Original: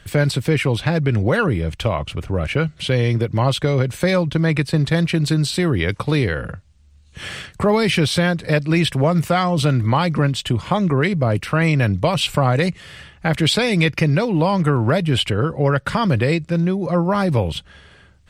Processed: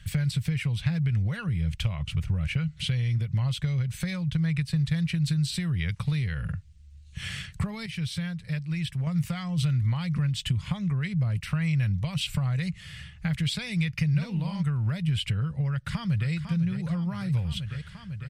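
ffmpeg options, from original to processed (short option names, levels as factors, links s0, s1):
-filter_complex "[0:a]asplit=3[s0][s1][s2];[s0]afade=t=out:st=14.14:d=0.02[s3];[s1]asplit=2[s4][s5];[s5]adelay=49,volume=0.75[s6];[s4][s6]amix=inputs=2:normalize=0,afade=t=in:st=14.14:d=0.02,afade=t=out:st=14.62:d=0.02[s7];[s2]afade=t=in:st=14.62:d=0.02[s8];[s3][s7][s8]amix=inputs=3:normalize=0,asplit=2[s9][s10];[s10]afade=t=in:st=15.7:d=0.01,afade=t=out:st=16.31:d=0.01,aecho=0:1:500|1000|1500|2000|2500|3000|3500|4000|4500|5000|5500|6000:0.266073|0.199554|0.149666|0.112249|0.084187|0.0631403|0.0473552|0.0355164|0.0266373|0.019978|0.0149835|0.0112376[s11];[s9][s11]amix=inputs=2:normalize=0,asplit=3[s12][s13][s14];[s12]atrim=end=7.862[s15];[s13]atrim=start=7.858:end=9.072,asetpts=PTS-STARTPTS,volume=0.316[s16];[s14]atrim=start=9.068[s17];[s15][s16]acrossfade=d=0.004:c1=hsin:c2=hsin[s18];[s18][s17]acrossfade=d=0.004:c1=hsin:c2=hsin,acompressor=threshold=0.0794:ratio=6,firequalizer=gain_entry='entry(160,0);entry(290,-22);entry(2000,-6)':delay=0.05:min_phase=1,volume=1.19"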